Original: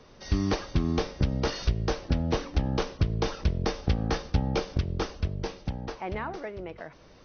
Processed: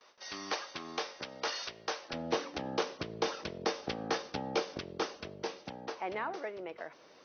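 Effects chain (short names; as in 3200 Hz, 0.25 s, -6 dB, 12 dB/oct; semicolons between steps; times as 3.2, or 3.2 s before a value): HPF 740 Hz 12 dB/oct, from 2.13 s 350 Hz; gate with hold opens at -49 dBFS; gain -1.5 dB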